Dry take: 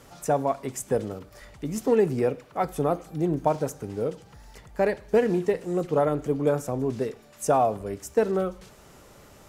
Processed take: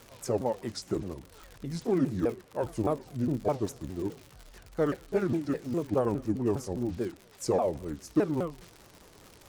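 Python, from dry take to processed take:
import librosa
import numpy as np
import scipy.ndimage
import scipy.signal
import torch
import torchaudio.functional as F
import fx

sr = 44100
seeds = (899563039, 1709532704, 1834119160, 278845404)

y = fx.pitch_ramps(x, sr, semitones=-7.5, every_ms=205)
y = fx.dmg_crackle(y, sr, seeds[0], per_s=110.0, level_db=-34.0)
y = y * librosa.db_to_amplitude(-3.5)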